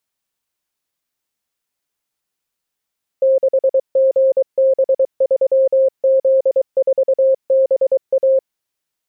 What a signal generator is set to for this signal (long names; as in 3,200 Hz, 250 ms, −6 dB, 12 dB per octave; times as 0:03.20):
Morse code "6GB3Z4BA" 23 words per minute 532 Hz −9.5 dBFS